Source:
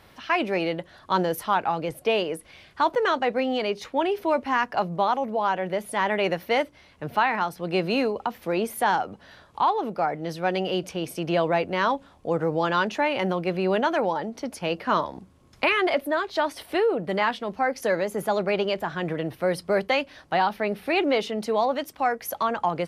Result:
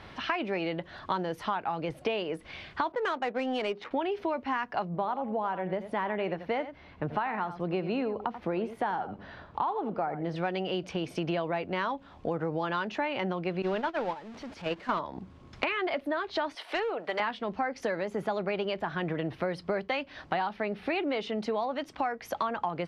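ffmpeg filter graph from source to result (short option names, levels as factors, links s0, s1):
-filter_complex "[0:a]asettb=1/sr,asplit=3[s0][s1][s2];[s0]atrim=end=2.924[s3];[s1]atrim=start=2.92:end=3.91,asetpts=PTS-STARTPTS,afade=t=in:d=0.004:c=qsin,afade=t=out:st=0.986:d=0.004:c=qsin,highpass=220,adynamicsmooth=sensitivity=7:basefreq=1200[s4];[s2]atrim=start=3.906[s5];[s3][s4]acrossfade=d=0.004:c1=hsin:c2=qsin[s6];[s6][s5]acrossfade=d=0.004:c1=qsin:c2=hsin,asettb=1/sr,asplit=3[s7][s8][s9];[s7]atrim=end=4.854[s10];[s8]atrim=start=4.85:end=10.36,asetpts=PTS-STARTPTS,afade=t=in:d=0.004:c=qsin,afade=t=out:st=5.506:d=0.004:c=qsin,highshelf=f=2400:g=-11.5,aecho=1:1:86:0.2,atrim=end_sample=242991[s11];[s9]atrim=start=10.356[s12];[s10][s11]acrossfade=d=0.004:c1=hsin:c2=qsin[s13];[s13][s12]acrossfade=d=0.004:c1=qsin:c2=hsin,asettb=1/sr,asplit=3[s14][s15][s16];[s14]atrim=end=13.624[s17];[s15]atrim=start=13.62:end=14.99,asetpts=PTS-STARTPTS,afade=t=in:d=0.004:c=qsin,afade=t=out:st=1.366:d=0.004:c=qsin,aeval=exprs='val(0)+0.5*0.0501*sgn(val(0))':c=same,agate=range=0.1:threshold=0.0794:ratio=16:release=100:detection=peak,acrossover=split=5700[s18][s19];[s19]acompressor=threshold=0.00178:ratio=4:attack=1:release=60[s20];[s18][s20]amix=inputs=2:normalize=0[s21];[s16]atrim=start=14.986[s22];[s17][s21]acrossfade=d=0.004:c1=hsin:c2=qsin[s23];[s23][s22]acrossfade=d=0.004:c1=qsin:c2=hsin,asettb=1/sr,asplit=3[s24][s25][s26];[s24]atrim=end=16.554[s27];[s25]atrim=start=16.55:end=17.2,asetpts=PTS-STARTPTS,afade=t=in:d=0.004:c=qsin,afade=t=out:st=0.646:d=0.004:c=qsin,highpass=650,asoftclip=type=hard:threshold=0.0668[s28];[s26]atrim=start=17.196[s29];[s27][s28]acrossfade=d=0.004:c1=hsin:c2=qsin[s30];[s30][s29]acrossfade=d=0.004:c1=qsin:c2=hsin,lowpass=4100,equalizer=f=520:w=3.6:g=-3,acompressor=threshold=0.0178:ratio=5,volume=2"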